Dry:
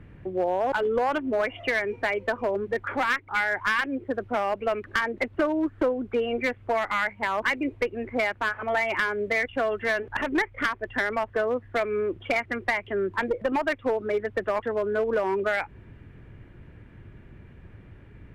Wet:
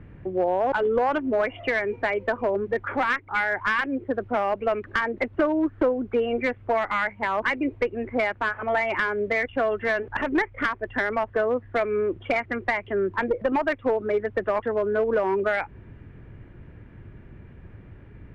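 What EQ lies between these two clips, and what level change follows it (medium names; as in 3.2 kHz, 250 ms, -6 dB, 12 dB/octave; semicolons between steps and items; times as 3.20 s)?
low-pass 2.2 kHz 6 dB/octave; +2.5 dB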